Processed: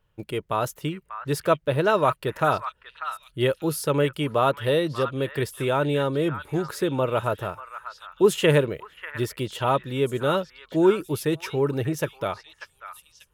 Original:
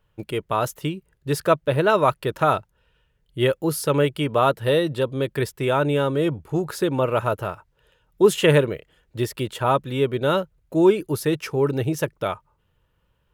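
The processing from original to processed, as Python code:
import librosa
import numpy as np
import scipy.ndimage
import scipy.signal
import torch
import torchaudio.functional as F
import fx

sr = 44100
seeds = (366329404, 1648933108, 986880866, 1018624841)

y = fx.echo_stepped(x, sr, ms=591, hz=1500.0, octaves=1.4, feedback_pct=70, wet_db=-6.0)
y = y * librosa.db_to_amplitude(-2.5)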